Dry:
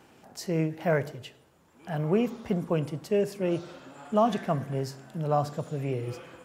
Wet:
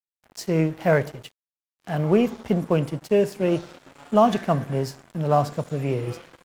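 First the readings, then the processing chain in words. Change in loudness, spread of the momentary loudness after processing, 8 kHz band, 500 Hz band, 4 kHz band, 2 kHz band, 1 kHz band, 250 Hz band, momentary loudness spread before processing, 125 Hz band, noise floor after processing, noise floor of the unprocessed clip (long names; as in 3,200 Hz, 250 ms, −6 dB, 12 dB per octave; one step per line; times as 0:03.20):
+6.0 dB, 11 LU, +4.5 dB, +6.0 dB, +5.0 dB, +6.0 dB, +6.0 dB, +6.0 dB, 15 LU, +5.5 dB, below −85 dBFS, −60 dBFS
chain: dead-zone distortion −47 dBFS
level +6.5 dB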